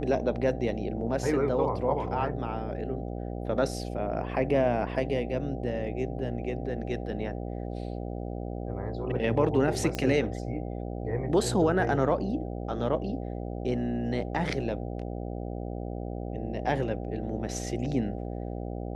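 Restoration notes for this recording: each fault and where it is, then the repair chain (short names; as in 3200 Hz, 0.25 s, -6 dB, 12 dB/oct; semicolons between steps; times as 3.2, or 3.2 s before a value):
buzz 60 Hz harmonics 13 -35 dBFS
9.95 pop -16 dBFS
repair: de-click; de-hum 60 Hz, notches 13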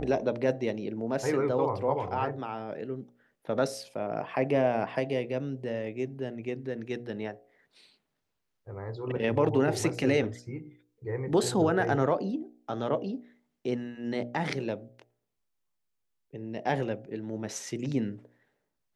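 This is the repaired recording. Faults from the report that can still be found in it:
none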